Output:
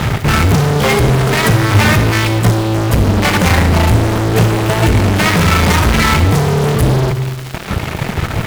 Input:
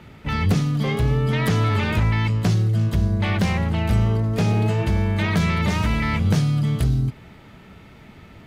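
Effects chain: reverb removal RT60 1.1 s; graphic EQ 125/250/4000 Hz +5/-7/-9 dB; reverse; compressor, threshold -25 dBFS, peak gain reduction 11 dB; reverse; fuzz box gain 47 dB, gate -48 dBFS; crackle 520/s -26 dBFS; on a send: reverb RT60 1.4 s, pre-delay 38 ms, DRR 8 dB; on the sum: gain +3.5 dB

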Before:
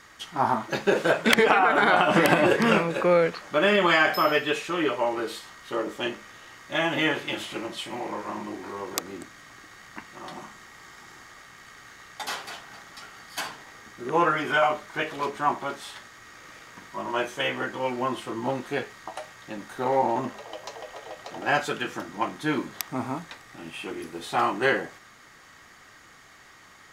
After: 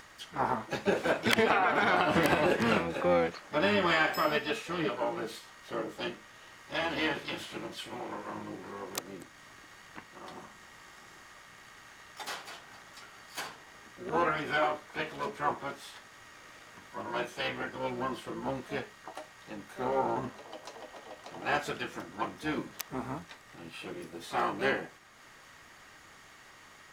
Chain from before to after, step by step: harmoniser -12 st -10 dB, +7 st -10 dB; upward compressor, threshold -40 dBFS; gain -7.5 dB

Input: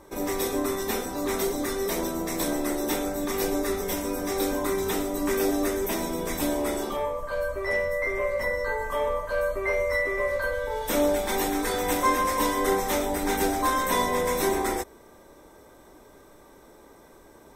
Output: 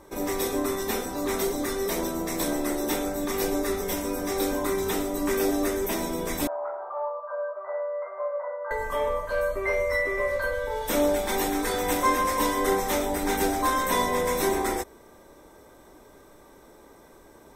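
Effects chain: 6.47–8.71 Chebyshev band-pass 590–1400 Hz, order 3

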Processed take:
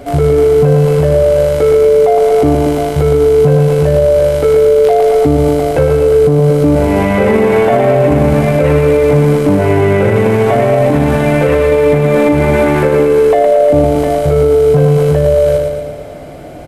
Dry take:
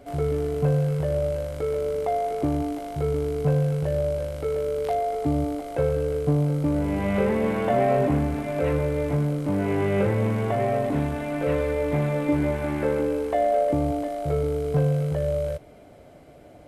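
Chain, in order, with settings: on a send: feedback echo 0.114 s, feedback 59%, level -5 dB; on the sum: maximiser +18 dB; gain -1 dB

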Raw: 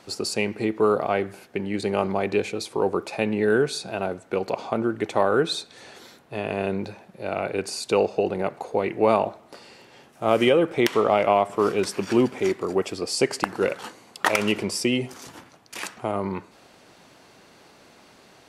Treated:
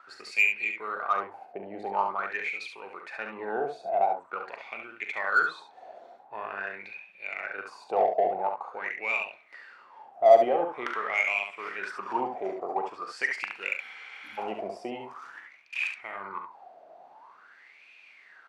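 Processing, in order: wah 0.46 Hz 670–2500 Hz, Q 12; spectral repair 13.83–14.36, 320–10000 Hz before; in parallel at -5.5 dB: soft clip -33.5 dBFS, distortion -5 dB; on the sum: early reflections 41 ms -10.5 dB, 70 ms -6 dB; gain +8.5 dB

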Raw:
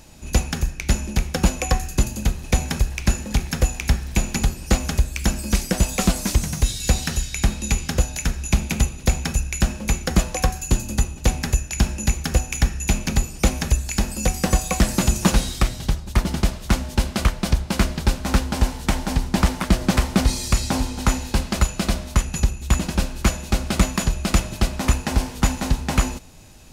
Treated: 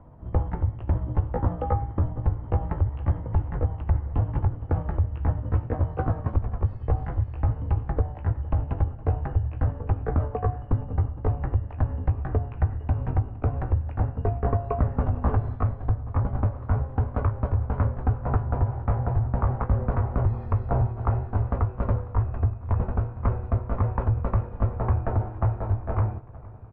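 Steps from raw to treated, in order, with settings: gliding pitch shift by +4.5 st ending unshifted; frequency shift -150 Hz; LPF 1200 Hz 24 dB/oct; limiter -13.5 dBFS, peak gain reduction 8 dB; doubler 16 ms -12 dB; warbling echo 0.462 s, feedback 70%, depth 63 cents, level -21.5 dB

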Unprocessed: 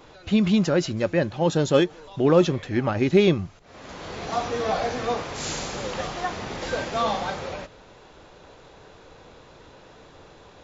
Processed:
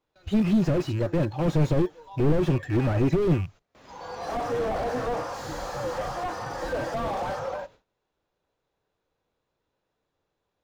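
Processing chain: rattling part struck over -29 dBFS, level -22 dBFS; gate with hold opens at -36 dBFS; in parallel at -5 dB: short-mantissa float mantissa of 2-bit; on the sum: spectral noise reduction 14 dB; slew limiter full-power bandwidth 32 Hz

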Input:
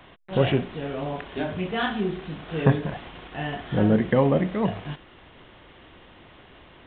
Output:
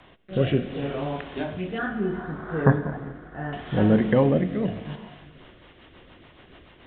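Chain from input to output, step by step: 1.78–3.53 resonant high shelf 2000 Hz -10.5 dB, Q 3; non-linear reverb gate 0.46 s flat, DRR 11.5 dB; rotary speaker horn 0.7 Hz, later 7 Hz, at 4.92; gain +1 dB

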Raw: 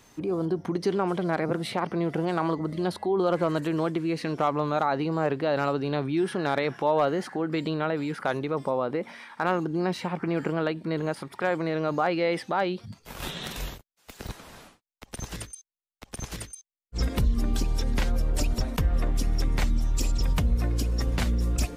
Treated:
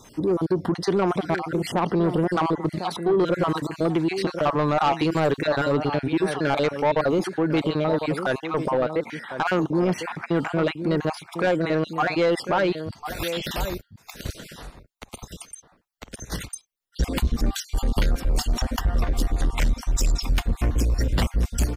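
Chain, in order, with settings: random spectral dropouts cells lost 38%; outdoor echo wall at 180 m, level -11 dB; 14.5–16.3 compressor 6:1, threshold -43 dBFS, peak gain reduction 12 dB; soft clip -22.5 dBFS, distortion -13 dB; 4.84–5.47 high shelf 3500 Hz +11 dB; gain +8 dB

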